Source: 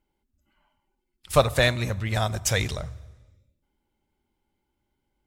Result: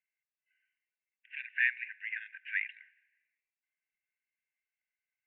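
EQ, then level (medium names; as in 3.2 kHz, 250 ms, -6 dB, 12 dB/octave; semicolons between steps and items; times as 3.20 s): brick-wall FIR high-pass 1.5 kHz; rippled Chebyshev low-pass 2.8 kHz, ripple 3 dB; distance through air 120 m; 0.0 dB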